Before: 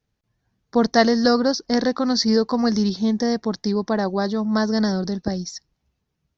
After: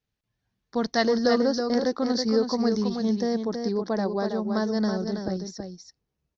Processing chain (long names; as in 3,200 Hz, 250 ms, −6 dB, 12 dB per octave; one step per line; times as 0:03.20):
parametric band 3,100 Hz +5.5 dB 1.6 octaves, from 0:01.04 440 Hz
single-tap delay 325 ms −6 dB
level −8.5 dB